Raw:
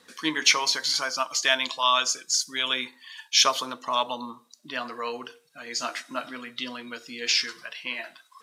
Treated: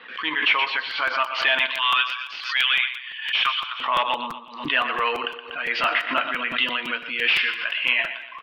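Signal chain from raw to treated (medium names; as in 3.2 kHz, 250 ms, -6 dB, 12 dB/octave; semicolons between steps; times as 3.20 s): 1.66–3.80 s: high-pass 1.2 kHz 24 dB/octave; feedback delay 121 ms, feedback 42%, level -12 dB; level rider gain up to 10 dB; hard clipper -16 dBFS, distortion -9 dB; elliptic low-pass 2.9 kHz, stop band 60 dB; tilt EQ +4.5 dB/octave; crackling interface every 0.17 s, samples 256, repeat, from 0.90 s; swell ahead of each attack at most 91 dB/s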